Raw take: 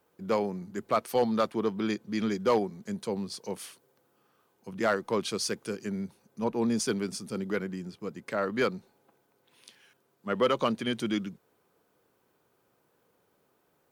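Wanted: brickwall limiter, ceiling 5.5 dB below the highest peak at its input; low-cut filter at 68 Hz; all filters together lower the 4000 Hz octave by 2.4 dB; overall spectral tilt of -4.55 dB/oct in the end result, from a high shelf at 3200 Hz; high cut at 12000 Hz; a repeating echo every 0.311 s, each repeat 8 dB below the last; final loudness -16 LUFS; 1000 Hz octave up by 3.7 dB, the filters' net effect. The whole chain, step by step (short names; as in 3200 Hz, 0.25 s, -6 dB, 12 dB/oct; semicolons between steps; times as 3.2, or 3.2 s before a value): HPF 68 Hz; LPF 12000 Hz; bell 1000 Hz +4.5 dB; high shelf 3200 Hz +6.5 dB; bell 4000 Hz -9 dB; limiter -17 dBFS; feedback echo 0.311 s, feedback 40%, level -8 dB; gain +14.5 dB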